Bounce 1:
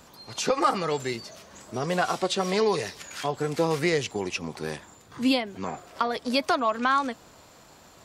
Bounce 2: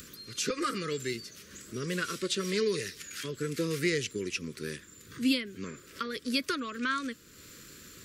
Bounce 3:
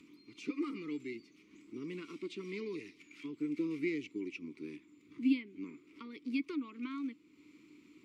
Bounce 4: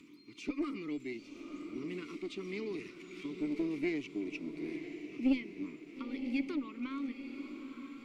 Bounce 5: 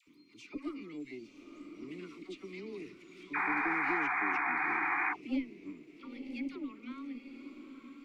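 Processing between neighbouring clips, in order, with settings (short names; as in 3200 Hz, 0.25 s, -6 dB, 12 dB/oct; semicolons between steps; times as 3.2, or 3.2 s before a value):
Chebyshev band-stop 410–1500 Hz, order 2; high shelf 9600 Hz +11 dB; upward compressor, threshold -38 dBFS; gain -3.5 dB
vowel filter u; gain +4.5 dB
one diode to ground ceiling -26 dBFS; diffused feedback echo 0.949 s, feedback 43%, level -8 dB; gain +2 dB
painted sound noise, 3.32–5.12, 710–2500 Hz -28 dBFS; dispersion lows, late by 73 ms, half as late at 880 Hz; gain -4.5 dB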